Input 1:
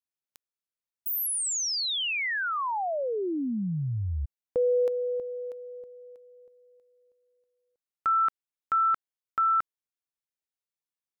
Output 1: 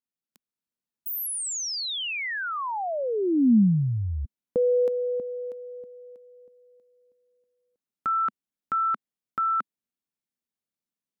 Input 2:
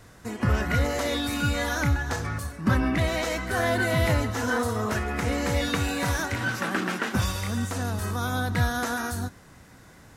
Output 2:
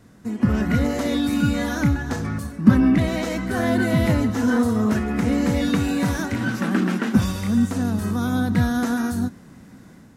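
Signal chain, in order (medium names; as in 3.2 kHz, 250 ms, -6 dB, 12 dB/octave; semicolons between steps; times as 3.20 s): level rider gain up to 4.5 dB; peaking EQ 220 Hz +14.5 dB 1.3 oct; trim -6 dB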